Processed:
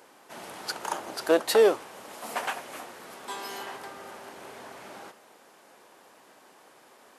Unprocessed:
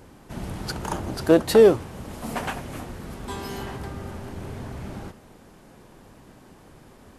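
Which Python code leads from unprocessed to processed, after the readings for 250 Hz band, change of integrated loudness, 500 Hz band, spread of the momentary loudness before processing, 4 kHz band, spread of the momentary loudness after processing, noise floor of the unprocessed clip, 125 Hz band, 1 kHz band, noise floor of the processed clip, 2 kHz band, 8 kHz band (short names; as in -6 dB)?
-11.0 dB, -4.5 dB, -5.5 dB, 21 LU, 0.0 dB, 22 LU, -51 dBFS, -24.0 dB, -0.5 dB, -57 dBFS, 0.0 dB, 0.0 dB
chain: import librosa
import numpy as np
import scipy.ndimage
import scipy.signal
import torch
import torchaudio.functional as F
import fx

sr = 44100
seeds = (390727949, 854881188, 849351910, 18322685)

y = scipy.signal.sosfilt(scipy.signal.butter(2, 560.0, 'highpass', fs=sr, output='sos'), x)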